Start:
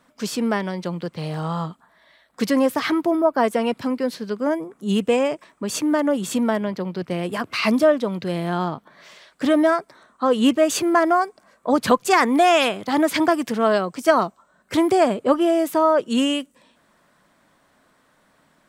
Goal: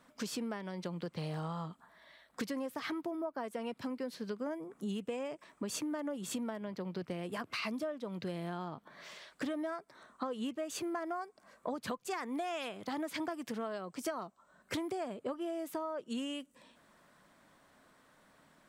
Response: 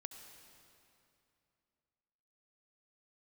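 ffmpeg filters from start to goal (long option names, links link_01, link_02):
-af "acompressor=threshold=-31dB:ratio=10,volume=-4.5dB"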